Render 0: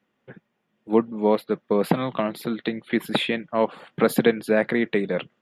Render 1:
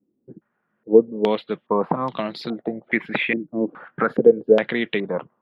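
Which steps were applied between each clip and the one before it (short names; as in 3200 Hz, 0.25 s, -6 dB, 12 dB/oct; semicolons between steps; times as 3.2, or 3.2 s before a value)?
maximiser +7.5 dB; stepped low-pass 2.4 Hz 320–4700 Hz; gain -9.5 dB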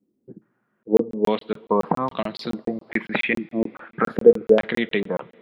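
on a send at -15 dB: reverb, pre-delay 3 ms; on the sum: crackling interface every 0.14 s, samples 1024, zero, from 0.83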